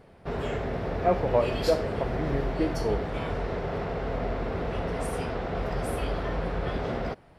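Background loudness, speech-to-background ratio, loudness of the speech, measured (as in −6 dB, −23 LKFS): −31.5 LKFS, 2.5 dB, −29.0 LKFS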